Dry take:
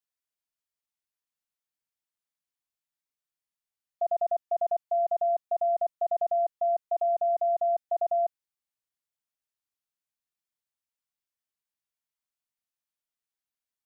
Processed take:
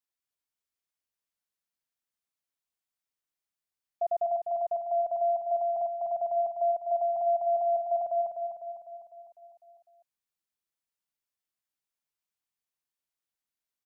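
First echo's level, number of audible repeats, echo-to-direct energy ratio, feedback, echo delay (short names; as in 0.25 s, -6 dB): -6.0 dB, 6, -4.5 dB, 57%, 0.251 s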